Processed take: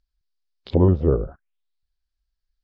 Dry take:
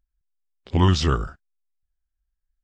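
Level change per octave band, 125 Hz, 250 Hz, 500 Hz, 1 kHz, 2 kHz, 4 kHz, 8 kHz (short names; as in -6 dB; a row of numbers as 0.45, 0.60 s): +0.5 dB, +2.5 dB, +7.5 dB, -8.5 dB, under -15 dB, under -15 dB, under -35 dB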